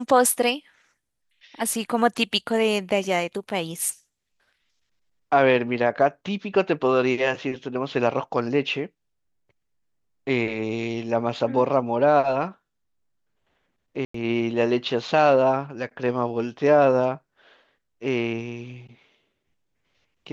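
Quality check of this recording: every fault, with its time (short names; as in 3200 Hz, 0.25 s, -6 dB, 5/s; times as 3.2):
14.05–14.14 gap 94 ms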